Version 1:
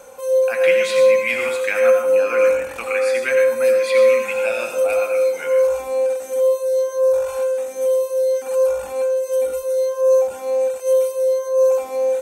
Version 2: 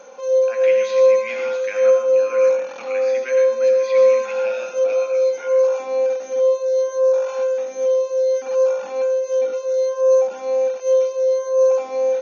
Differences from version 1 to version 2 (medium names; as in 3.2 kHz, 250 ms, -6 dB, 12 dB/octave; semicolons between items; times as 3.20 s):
speech -9.0 dB; master: add brick-wall FIR band-pass 160–6800 Hz